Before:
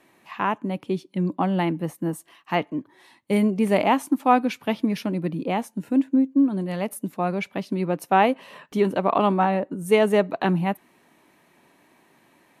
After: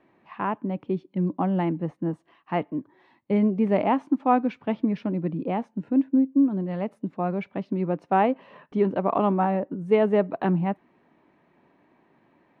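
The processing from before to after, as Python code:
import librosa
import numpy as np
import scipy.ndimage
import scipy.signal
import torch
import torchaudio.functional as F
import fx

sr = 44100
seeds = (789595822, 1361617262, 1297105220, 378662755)

y = fx.spacing_loss(x, sr, db_at_10k=38)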